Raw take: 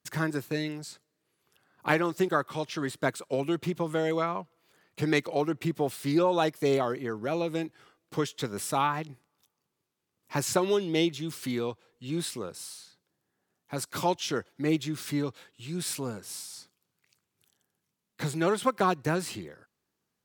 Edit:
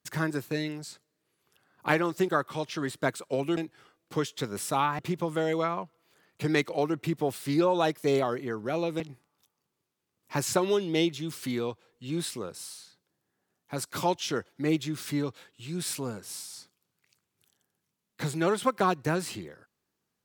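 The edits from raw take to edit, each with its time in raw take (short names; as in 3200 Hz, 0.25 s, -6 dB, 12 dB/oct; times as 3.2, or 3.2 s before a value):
7.58–9 move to 3.57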